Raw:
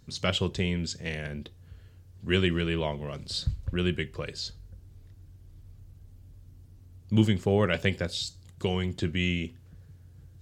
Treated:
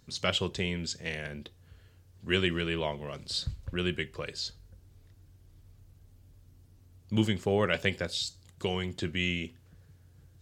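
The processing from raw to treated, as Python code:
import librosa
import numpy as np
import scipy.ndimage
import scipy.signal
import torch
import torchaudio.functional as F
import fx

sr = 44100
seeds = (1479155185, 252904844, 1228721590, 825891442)

y = fx.low_shelf(x, sr, hz=290.0, db=-7.0)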